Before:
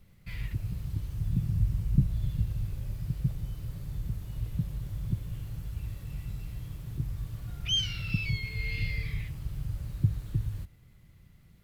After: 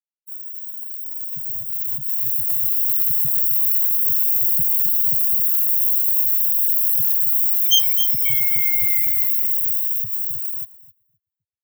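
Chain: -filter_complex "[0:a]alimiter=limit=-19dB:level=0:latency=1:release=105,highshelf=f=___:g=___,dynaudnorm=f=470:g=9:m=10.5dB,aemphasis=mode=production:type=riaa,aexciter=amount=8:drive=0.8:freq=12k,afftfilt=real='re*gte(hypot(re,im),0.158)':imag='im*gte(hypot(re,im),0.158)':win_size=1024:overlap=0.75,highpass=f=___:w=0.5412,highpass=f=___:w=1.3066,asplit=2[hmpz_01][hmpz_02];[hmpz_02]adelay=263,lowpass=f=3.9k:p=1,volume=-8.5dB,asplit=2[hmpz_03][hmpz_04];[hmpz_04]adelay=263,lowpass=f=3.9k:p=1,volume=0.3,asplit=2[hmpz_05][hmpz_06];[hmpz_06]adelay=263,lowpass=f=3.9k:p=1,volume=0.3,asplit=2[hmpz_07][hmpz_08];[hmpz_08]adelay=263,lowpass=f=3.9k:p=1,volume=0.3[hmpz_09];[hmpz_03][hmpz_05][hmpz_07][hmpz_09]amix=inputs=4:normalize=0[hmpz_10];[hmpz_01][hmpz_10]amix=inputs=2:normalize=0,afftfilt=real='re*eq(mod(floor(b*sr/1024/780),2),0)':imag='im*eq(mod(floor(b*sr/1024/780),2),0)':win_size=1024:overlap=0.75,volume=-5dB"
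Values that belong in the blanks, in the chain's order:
6.4k, 7, 73, 73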